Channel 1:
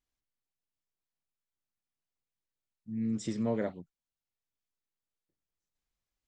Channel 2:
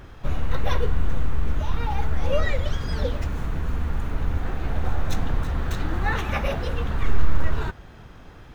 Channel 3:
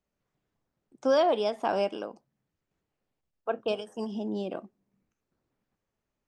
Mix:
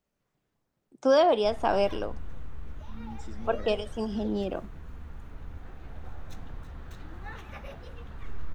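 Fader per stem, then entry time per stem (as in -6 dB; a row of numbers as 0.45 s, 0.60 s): -11.0 dB, -17.0 dB, +2.5 dB; 0.00 s, 1.20 s, 0.00 s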